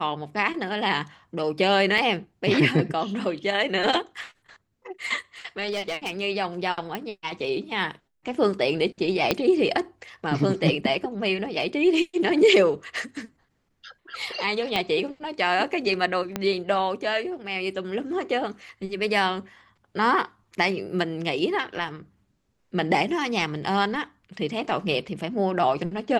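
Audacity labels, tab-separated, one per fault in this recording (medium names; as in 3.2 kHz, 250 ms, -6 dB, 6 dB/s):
1.980000	1.980000	dropout 3.2 ms
5.710000	6.220000	clipped -24 dBFS
6.950000	6.950000	pop -16 dBFS
9.310000	9.310000	pop -6 dBFS
14.760000	14.760000	pop -11 dBFS
16.360000	16.360000	pop -11 dBFS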